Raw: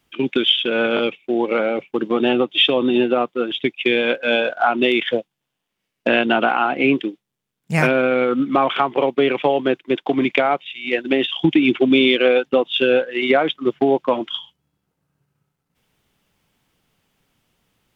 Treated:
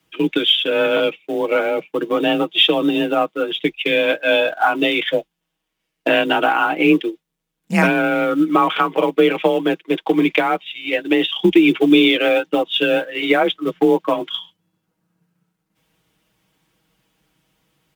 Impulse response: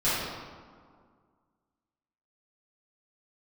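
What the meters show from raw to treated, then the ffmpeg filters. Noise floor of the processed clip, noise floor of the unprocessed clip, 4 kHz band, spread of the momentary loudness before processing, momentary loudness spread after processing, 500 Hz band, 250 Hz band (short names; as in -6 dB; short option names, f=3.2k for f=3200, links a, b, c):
-78 dBFS, -79 dBFS, +1.5 dB, 7 LU, 8 LU, 0.0 dB, +2.0 dB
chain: -af "acrusher=bits=9:mode=log:mix=0:aa=0.000001,afreqshift=31,aecho=1:1:6.3:0.65"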